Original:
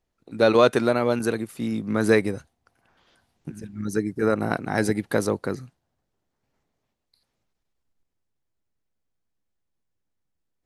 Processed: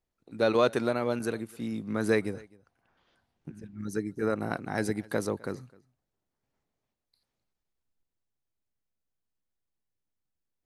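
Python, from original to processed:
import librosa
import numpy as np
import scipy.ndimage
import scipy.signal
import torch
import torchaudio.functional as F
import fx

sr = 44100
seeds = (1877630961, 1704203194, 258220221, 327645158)

y = fx.high_shelf(x, sr, hz=fx.line((2.29, 9000.0), (3.78, 5000.0)), db=-10.5, at=(2.29, 3.78), fade=0.02)
y = fx.echo_feedback(y, sr, ms=258, feedback_pct=15, wet_db=-24)
y = y * 10.0 ** (-7.0 / 20.0)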